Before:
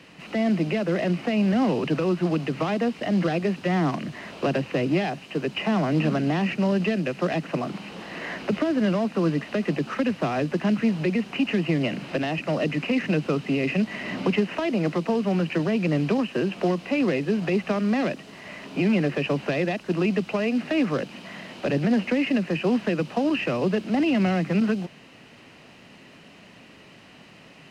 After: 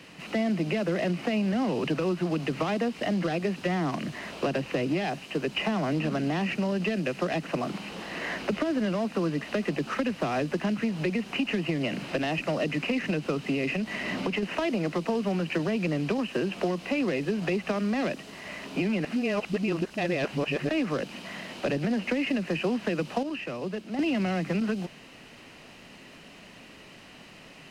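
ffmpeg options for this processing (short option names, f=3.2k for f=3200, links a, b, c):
-filter_complex "[0:a]asettb=1/sr,asplit=3[a][b][c];[a]atrim=end=13.734[d];[b]atrim=start=13.73:end=14.43,asetpts=PTS-STARTPTS,afade=t=in:d=0.004:c=qsin,afade=t=out:st=0.696:d=0.004:c=qsin,acompressor=threshold=-25dB:ratio=2.5:attack=3.2:release=140:knee=1:detection=peak[e];[c]atrim=start=14.426[f];[d][e]acrossfade=d=0.004:c1=hsin:c2=qsin[g];[g][f]acrossfade=d=0.004:c1=qsin:c2=hsin,asplit=5[h][i][j][k][l];[h]atrim=end=19.052[m];[i]atrim=start=19.048:end=20.692,asetpts=PTS-STARTPTS,areverse[n];[j]atrim=start=20.688:end=23.232[o];[k]atrim=start=23.228:end=23.992,asetpts=PTS-STARTPTS,volume=-9dB[p];[l]atrim=start=23.988[q];[m][n]acrossfade=d=0.004:c1=hsin:c2=hsin[r];[r][o]acrossfade=d=0.004:c1=hsin:c2=hsin[s];[s][p]acrossfade=d=0.004:c1=hsin:c2=hsin[t];[t][q]acrossfade=d=0.004:c1=hsin:c2=hsin,highshelf=f=6.2k:g=6,acompressor=threshold=-23dB:ratio=6,asubboost=boost=3:cutoff=53"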